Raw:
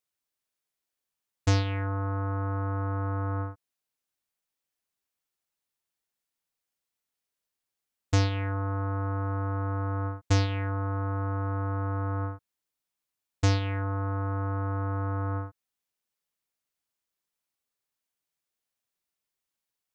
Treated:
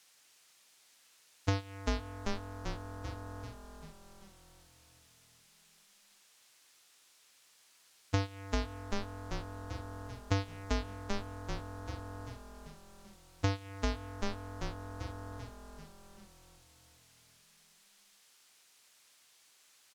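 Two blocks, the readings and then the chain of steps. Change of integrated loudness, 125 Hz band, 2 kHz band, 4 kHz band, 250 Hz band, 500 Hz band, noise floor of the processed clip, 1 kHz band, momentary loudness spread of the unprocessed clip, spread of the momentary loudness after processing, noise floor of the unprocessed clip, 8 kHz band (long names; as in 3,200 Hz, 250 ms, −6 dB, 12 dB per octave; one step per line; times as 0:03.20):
−9.5 dB, −12.0 dB, −6.0 dB, −4.0 dB, −7.0 dB, −6.5 dB, −66 dBFS, −9.0 dB, 6 LU, 20 LU, below −85 dBFS, can't be measured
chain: adaptive Wiener filter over 41 samples
noise gate −22 dBFS, range −21 dB
low-shelf EQ 190 Hz −6.5 dB
on a send: echo with shifted repeats 390 ms, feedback 55%, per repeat −43 Hz, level −6.5 dB
on the sum: downward compressor, threshold −36 dBFS, peak gain reduction 10.5 dB
in parallel at −4.5 dB: hard clipping −35 dBFS, distortion −13 dB
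on the sum: background noise blue −60 dBFS
high-frequency loss of the air 60 metres
level +5 dB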